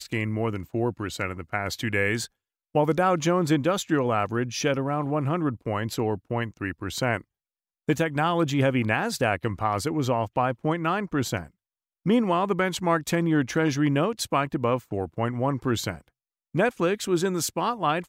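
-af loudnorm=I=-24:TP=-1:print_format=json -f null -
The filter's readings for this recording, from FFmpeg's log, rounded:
"input_i" : "-26.0",
"input_tp" : "-10.6",
"input_lra" : "2.5",
"input_thresh" : "-36.1",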